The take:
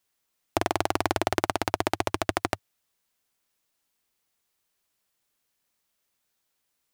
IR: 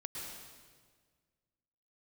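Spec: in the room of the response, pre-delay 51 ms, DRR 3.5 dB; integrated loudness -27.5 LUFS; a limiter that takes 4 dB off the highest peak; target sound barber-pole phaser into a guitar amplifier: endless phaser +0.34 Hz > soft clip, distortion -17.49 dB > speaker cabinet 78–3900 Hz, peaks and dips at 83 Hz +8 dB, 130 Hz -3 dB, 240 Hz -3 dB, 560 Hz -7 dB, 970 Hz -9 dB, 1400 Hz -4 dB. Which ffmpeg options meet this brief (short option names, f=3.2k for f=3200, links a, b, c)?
-filter_complex "[0:a]alimiter=limit=-7.5dB:level=0:latency=1,asplit=2[a][b];[1:a]atrim=start_sample=2205,adelay=51[c];[b][c]afir=irnorm=-1:irlink=0,volume=-3dB[d];[a][d]amix=inputs=2:normalize=0,asplit=2[e][f];[f]afreqshift=0.34[g];[e][g]amix=inputs=2:normalize=1,asoftclip=threshold=-15dB,highpass=78,equalizer=f=83:t=q:w=4:g=8,equalizer=f=130:t=q:w=4:g=-3,equalizer=f=240:t=q:w=4:g=-3,equalizer=f=560:t=q:w=4:g=-7,equalizer=f=970:t=q:w=4:g=-9,equalizer=f=1.4k:t=q:w=4:g=-4,lowpass=f=3.9k:w=0.5412,lowpass=f=3.9k:w=1.3066,volume=9dB"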